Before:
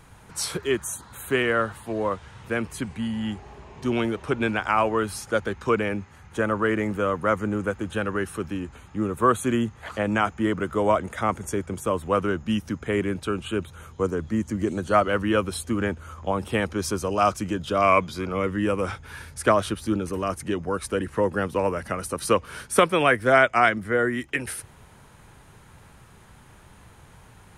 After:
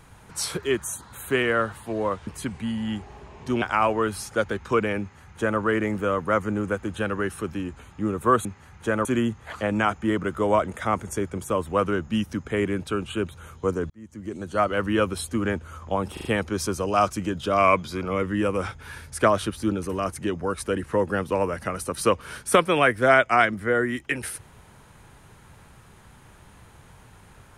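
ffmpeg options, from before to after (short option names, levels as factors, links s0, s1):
-filter_complex "[0:a]asplit=9[s0][s1][s2][s3][s4][s5][s6][s7][s8];[s0]atrim=end=2.272[s9];[s1]atrim=start=2.628:end=3.982[s10];[s2]atrim=start=4.578:end=9.412[s11];[s3]atrim=start=5.958:end=6.562[s12];[s4]atrim=start=9.408:end=14.26,asetpts=PTS-STARTPTS,afade=t=out:st=4.848:d=0.004:c=hsin[s13];[s5]atrim=start=14.26:end=16.532,asetpts=PTS-STARTPTS,afade=t=in:d=1.01[s14];[s6]atrim=start=16.488:end=16.532[s15];[s7]atrim=start=16.488:end=16.532[s16];[s8]atrim=start=16.488[s17];[s9][s10]acrossfade=d=0.004:c1=hsin:c2=hsin[s18];[s18][s11]acrossfade=d=0.004:c1=hsin:c2=hsin[s19];[s19][s12]acrossfade=d=0.004:c1=hsin:c2=hsin[s20];[s13][s14]concat=n=2:v=0:a=1[s21];[s20][s21]acrossfade=d=0.004:c1=hsin:c2=hsin[s22];[s22][s15]acrossfade=d=0.004:c1=hsin:c2=hsin[s23];[s23][s16]acrossfade=d=0.004:c1=hsin:c2=hsin[s24];[s24][s17]acrossfade=d=0.004:c1=hsin:c2=hsin"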